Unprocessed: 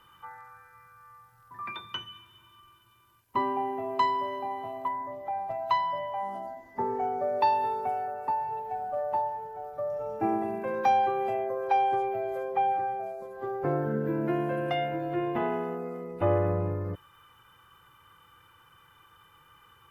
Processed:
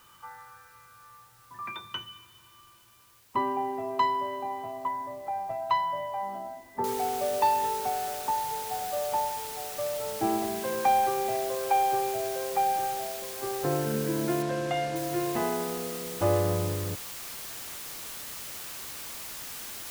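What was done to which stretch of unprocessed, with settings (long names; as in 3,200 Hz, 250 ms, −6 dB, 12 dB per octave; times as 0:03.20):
0:06.84: noise floor change −61 dB −40 dB
0:14.42–0:14.96: high-frequency loss of the air 59 metres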